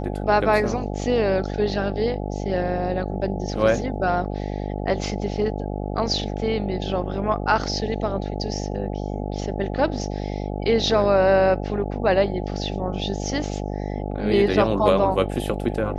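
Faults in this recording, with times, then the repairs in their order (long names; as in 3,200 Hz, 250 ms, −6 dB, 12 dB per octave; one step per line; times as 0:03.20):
mains buzz 50 Hz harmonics 17 −28 dBFS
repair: hum removal 50 Hz, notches 17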